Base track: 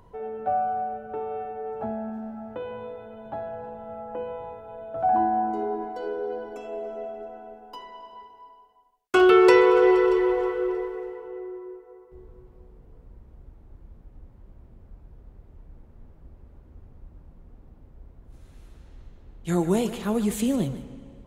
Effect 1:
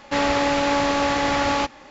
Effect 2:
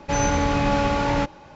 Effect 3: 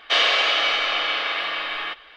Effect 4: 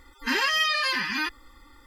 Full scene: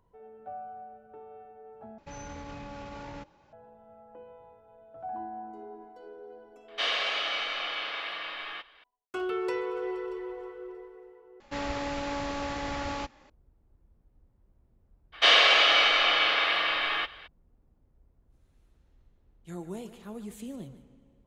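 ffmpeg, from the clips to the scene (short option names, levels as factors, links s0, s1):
-filter_complex "[3:a]asplit=2[s0][s1];[0:a]volume=0.158[s2];[2:a]alimiter=limit=0.133:level=0:latency=1:release=22[s3];[1:a]lowshelf=f=100:g=11.5[s4];[s2]asplit=3[s5][s6][s7];[s5]atrim=end=1.984[s8];[s3]atrim=end=1.55,asetpts=PTS-STARTPTS,volume=0.15[s9];[s6]atrim=start=3.526:end=11.404[s10];[s4]atrim=end=1.9,asetpts=PTS-STARTPTS,volume=0.211[s11];[s7]atrim=start=13.296[s12];[s0]atrim=end=2.16,asetpts=PTS-STARTPTS,volume=0.299,afade=t=in:d=0.004:c=hsin,afade=t=out:st=2.156:d=0.004:c=hsin,adelay=6680[s13];[s1]atrim=end=2.16,asetpts=PTS-STARTPTS,volume=0.944,afade=t=in:d=0.02,afade=t=out:st=2.14:d=0.02,adelay=15120[s14];[s8][s9]acrossfade=d=0.004:c1=hsin:c2=hsin[s15];[s15][s10]acrossfade=d=0.004:c1=hsin:c2=hsin[s16];[s16][s11]acrossfade=d=0.004:c1=hsin:c2=hsin[s17];[s17][s12]acrossfade=d=0.004:c1=hsin:c2=hsin[s18];[s18][s13][s14]amix=inputs=3:normalize=0"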